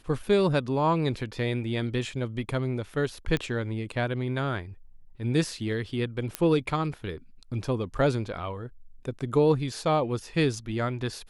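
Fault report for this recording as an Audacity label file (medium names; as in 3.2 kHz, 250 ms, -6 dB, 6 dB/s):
3.370000	3.370000	pop -16 dBFS
6.350000	6.350000	pop -11 dBFS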